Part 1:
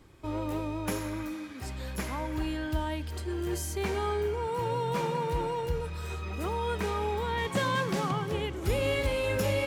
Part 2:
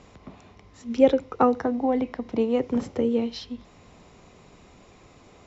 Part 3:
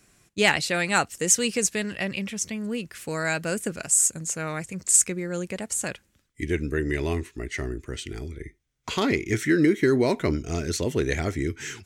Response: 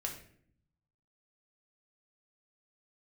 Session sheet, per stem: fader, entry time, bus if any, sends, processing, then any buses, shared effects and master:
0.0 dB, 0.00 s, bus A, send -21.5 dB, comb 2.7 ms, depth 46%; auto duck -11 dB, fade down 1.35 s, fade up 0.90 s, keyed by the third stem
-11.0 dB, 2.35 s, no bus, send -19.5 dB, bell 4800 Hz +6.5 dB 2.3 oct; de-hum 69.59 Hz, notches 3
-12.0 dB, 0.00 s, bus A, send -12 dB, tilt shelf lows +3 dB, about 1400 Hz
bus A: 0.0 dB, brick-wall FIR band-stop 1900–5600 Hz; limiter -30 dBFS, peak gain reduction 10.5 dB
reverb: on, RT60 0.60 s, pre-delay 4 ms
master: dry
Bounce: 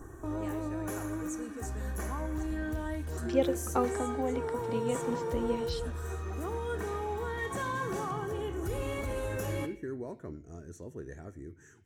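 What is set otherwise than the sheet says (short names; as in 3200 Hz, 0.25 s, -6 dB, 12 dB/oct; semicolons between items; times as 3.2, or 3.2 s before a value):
stem 1 0.0 dB -> +8.5 dB; stem 3 -12.0 dB -> -22.0 dB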